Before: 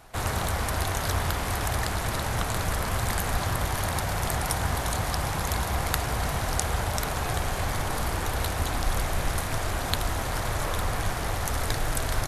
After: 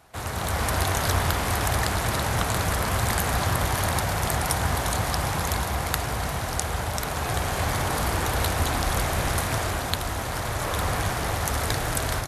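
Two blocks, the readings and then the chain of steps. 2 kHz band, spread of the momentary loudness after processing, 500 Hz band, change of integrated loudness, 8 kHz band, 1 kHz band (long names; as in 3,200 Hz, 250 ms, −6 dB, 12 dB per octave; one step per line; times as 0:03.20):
+3.0 dB, 4 LU, +3.0 dB, +3.0 dB, +3.0 dB, +3.0 dB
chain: high-pass filter 52 Hz
automatic gain control gain up to 8 dB
level −3.5 dB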